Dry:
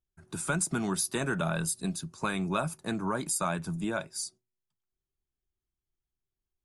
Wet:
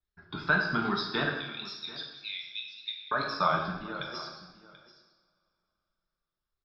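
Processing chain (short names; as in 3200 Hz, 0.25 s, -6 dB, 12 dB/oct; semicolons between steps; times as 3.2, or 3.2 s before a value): reverse delay 0.134 s, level -11.5 dB; reverb removal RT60 0.97 s; 1.29–3.11 Chebyshev high-pass 2100 Hz, order 8; 3.72–4.25 negative-ratio compressor -40 dBFS, ratio -1; rippled Chebyshev low-pass 5300 Hz, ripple 9 dB; wow and flutter 110 cents; echo 0.735 s -18 dB; two-slope reverb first 0.9 s, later 3.2 s, from -24 dB, DRR -0.5 dB; gain +6.5 dB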